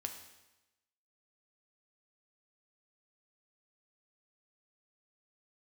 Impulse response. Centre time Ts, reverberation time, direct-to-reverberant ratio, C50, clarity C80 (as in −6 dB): 21 ms, 1.0 s, 4.5 dB, 8.0 dB, 10.0 dB